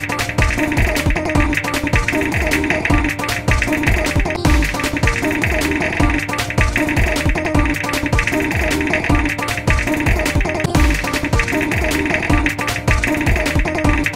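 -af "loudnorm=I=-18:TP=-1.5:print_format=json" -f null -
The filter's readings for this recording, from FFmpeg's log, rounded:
"input_i" : "-16.8",
"input_tp" : "-1.2",
"input_lra" : "0.2",
"input_thresh" : "-26.8",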